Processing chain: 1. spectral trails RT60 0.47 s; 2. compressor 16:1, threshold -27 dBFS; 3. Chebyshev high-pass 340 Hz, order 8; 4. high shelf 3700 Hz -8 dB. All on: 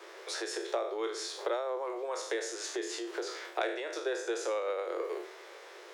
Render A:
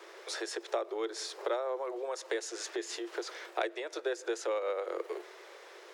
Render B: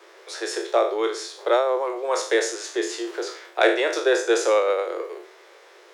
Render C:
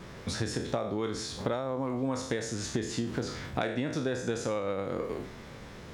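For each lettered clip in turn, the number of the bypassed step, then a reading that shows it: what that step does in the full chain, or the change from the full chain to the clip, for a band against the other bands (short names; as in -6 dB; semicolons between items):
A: 1, momentary loudness spread change +2 LU; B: 2, mean gain reduction 7.5 dB; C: 3, 250 Hz band +9.0 dB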